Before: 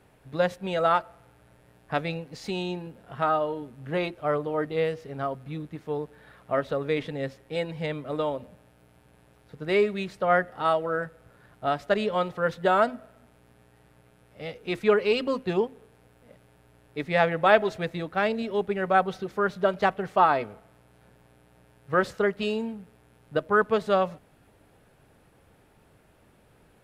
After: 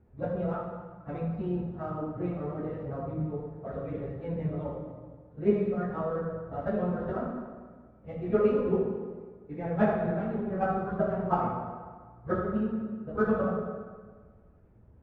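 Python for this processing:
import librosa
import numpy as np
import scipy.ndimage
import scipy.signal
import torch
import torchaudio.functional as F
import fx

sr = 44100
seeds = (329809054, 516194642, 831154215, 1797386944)

y = fx.dead_time(x, sr, dead_ms=0.078)
y = fx.low_shelf(y, sr, hz=420.0, db=11.0)
y = fx.level_steps(y, sr, step_db=15)
y = fx.rev_fdn(y, sr, rt60_s=2.8, lf_ratio=1.0, hf_ratio=0.7, size_ms=83.0, drr_db=-6.5)
y = fx.stretch_vocoder_free(y, sr, factor=0.56)
y = scipy.signal.sosfilt(scipy.signal.butter(2, 1500.0, 'lowpass', fs=sr, output='sos'), y)
y = fx.low_shelf(y, sr, hz=170.0, db=7.0)
y = y * librosa.db_to_amplitude(-7.0)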